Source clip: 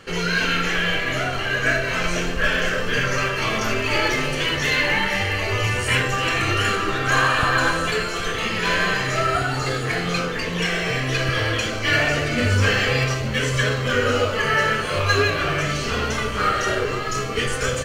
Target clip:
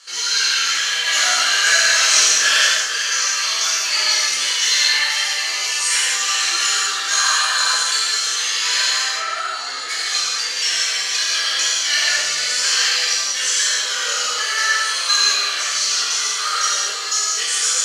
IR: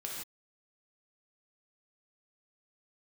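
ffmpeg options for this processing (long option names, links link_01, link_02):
-filter_complex "[0:a]lowpass=6600,asettb=1/sr,asplit=3[link_01][link_02][link_03];[link_01]atrim=end=9.024[link_04];[link_02]atrim=start=9.02:end=9.89,asetpts=PTS-STARTPTS,afade=type=in:duration=0.004:curve=qsin,afade=type=out:start_time=0.866:duration=0.004:curve=qsin,acrossover=split=3200[link_05][link_06];[link_06]acompressor=threshold=-50dB:ratio=4:attack=1:release=60[link_07];[link_05][link_07]amix=inputs=2:normalize=0[link_08];[link_03]atrim=start=9.886[link_09];[link_04][link_08]acrossfade=duration=0.004:curve1=hsin:curve2=qsin[link_10];[link_10][link_09]acrossfade=duration=0.004:curve1=qsin:curve2=hsin,highpass=1200,asettb=1/sr,asplit=3[link_11][link_12][link_13];[link_11]atrim=end=1.064[link_14];[link_12]atrim=start=1.06:end=2.65,asetpts=PTS-STARTPTS,afade=type=in:duration=0.004:curve=qsin,afade=type=out:start_time=1.586:duration=0.004:curve=qsin,acontrast=68[link_15];[link_13]atrim=start=2.646[link_16];[link_14][link_15]acrossfade=duration=0.004:curve1=hsin:curve2=qsin[link_17];[link_17][link_16]acrossfade=duration=0.004:curve1=qsin:curve2=hsin,flanger=delay=16.5:depth=3.1:speed=1.1,aexciter=amount=6.2:drive=6.7:freq=3800[link_18];[1:a]atrim=start_sample=2205,asetrate=36603,aresample=44100[link_19];[link_18][link_19]afir=irnorm=-1:irlink=0,volume=2dB"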